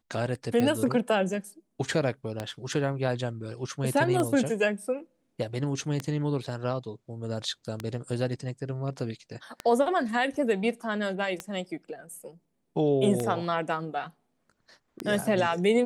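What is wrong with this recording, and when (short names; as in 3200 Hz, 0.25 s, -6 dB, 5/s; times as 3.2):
tick 33 1/3 rpm -15 dBFS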